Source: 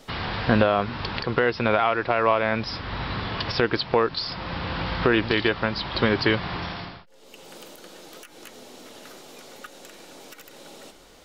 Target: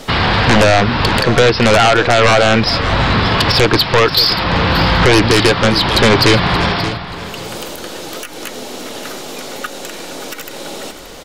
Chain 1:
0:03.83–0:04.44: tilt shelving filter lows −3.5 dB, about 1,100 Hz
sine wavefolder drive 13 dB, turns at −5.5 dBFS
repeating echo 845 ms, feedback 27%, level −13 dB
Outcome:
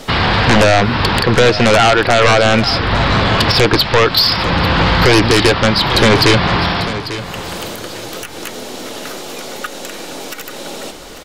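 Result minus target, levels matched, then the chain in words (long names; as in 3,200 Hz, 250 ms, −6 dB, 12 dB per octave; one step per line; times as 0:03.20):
echo 267 ms late
0:03.83–0:04.44: tilt shelving filter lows −3.5 dB, about 1,100 Hz
sine wavefolder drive 13 dB, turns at −5.5 dBFS
repeating echo 578 ms, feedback 27%, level −13 dB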